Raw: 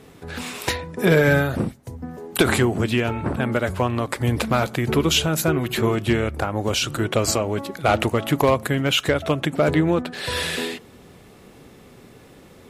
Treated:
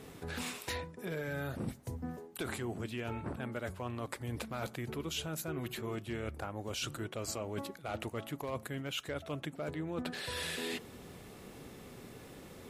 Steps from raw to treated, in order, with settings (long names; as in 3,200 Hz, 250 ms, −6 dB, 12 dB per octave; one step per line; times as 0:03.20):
high-shelf EQ 7,200 Hz +4 dB
reversed playback
downward compressor 16 to 1, threshold −31 dBFS, peak gain reduction 20 dB
reversed playback
level −4 dB